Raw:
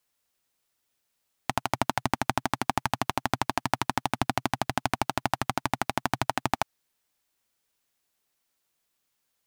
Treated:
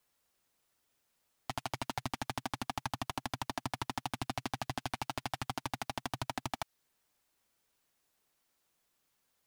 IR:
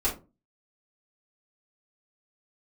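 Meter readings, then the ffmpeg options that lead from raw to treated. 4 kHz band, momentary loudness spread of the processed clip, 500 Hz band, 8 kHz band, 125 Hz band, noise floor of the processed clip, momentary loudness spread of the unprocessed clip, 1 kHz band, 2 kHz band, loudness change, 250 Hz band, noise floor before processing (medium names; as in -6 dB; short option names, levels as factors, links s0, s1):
-7.0 dB, 2 LU, -11.0 dB, -8.0 dB, -8.0 dB, -79 dBFS, 2 LU, -11.0 dB, -11.0 dB, -10.0 dB, -10.0 dB, -78 dBFS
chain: -filter_complex "[0:a]acrossover=split=1800[s0][s1];[s0]alimiter=limit=0.158:level=0:latency=1:release=246[s2];[s1]flanger=delay=3:depth=4.9:regen=-16:speed=0.31:shape=sinusoidal[s3];[s2][s3]amix=inputs=2:normalize=0,asoftclip=type=tanh:threshold=0.0376,volume=1.33"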